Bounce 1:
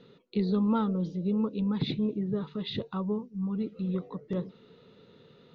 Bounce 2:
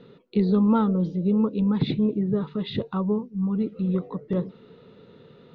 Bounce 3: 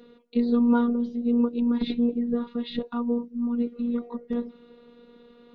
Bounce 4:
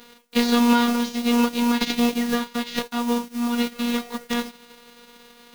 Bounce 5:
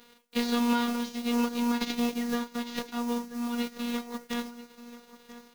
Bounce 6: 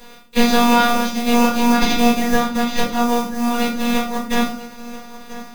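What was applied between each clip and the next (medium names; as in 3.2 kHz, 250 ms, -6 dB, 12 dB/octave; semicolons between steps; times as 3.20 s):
low-pass 2.2 kHz 6 dB/octave; trim +6.5 dB
robot voice 239 Hz
formants flattened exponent 0.3; trim +3 dB
delay 986 ms -15.5 dB; trim -8.5 dB
simulated room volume 250 m³, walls furnished, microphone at 6.8 m; trim +4.5 dB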